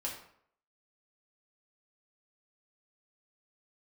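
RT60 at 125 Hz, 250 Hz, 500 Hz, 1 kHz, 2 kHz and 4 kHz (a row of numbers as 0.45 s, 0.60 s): 0.60 s, 0.60 s, 0.65 s, 0.65 s, 0.55 s, 0.45 s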